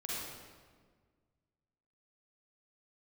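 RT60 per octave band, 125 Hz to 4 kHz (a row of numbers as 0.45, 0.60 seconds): 2.3, 2.0, 1.8, 1.5, 1.3, 1.1 seconds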